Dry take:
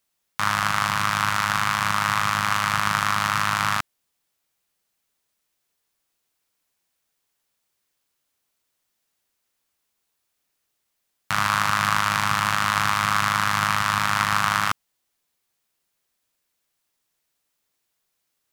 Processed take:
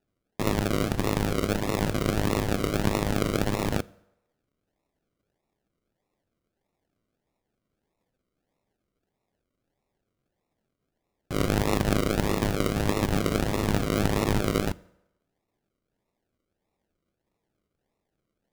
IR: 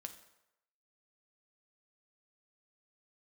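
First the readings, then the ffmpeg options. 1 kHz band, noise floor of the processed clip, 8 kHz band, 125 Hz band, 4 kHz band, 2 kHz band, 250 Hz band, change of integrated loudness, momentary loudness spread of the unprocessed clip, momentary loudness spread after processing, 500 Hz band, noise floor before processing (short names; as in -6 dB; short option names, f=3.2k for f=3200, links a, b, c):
-12.5 dB, -82 dBFS, -7.0 dB, +4.0 dB, -8.5 dB, -13.0 dB, +9.0 dB, -5.0 dB, 4 LU, 5 LU, +11.5 dB, -77 dBFS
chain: -filter_complex "[0:a]equalizer=f=5.7k:t=o:w=1.5:g=-7,acrusher=samples=40:mix=1:aa=0.000001:lfo=1:lforange=24:lforate=1.6,asplit=2[a][b];[1:a]atrim=start_sample=2205[c];[b][c]afir=irnorm=-1:irlink=0,volume=-6dB[d];[a][d]amix=inputs=2:normalize=0,volume=-4.5dB"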